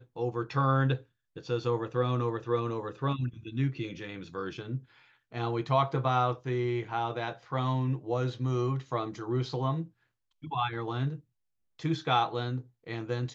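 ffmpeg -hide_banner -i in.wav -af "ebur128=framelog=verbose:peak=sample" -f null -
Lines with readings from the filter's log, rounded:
Integrated loudness:
  I:         -31.6 LUFS
  Threshold: -41.9 LUFS
Loudness range:
  LRA:         4.0 LU
  Threshold: -52.2 LUFS
  LRA low:   -34.5 LUFS
  LRA high:  -30.5 LUFS
Sample peak:
  Peak:      -13.5 dBFS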